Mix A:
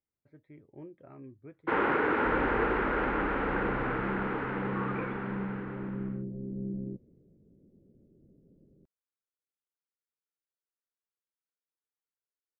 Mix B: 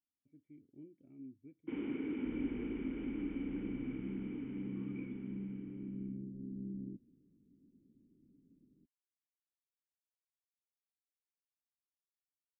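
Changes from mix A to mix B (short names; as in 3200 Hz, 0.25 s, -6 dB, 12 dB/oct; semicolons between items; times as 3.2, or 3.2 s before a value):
first sound: add bell 560 Hz -5 dB 0.66 oct; master: add vocal tract filter i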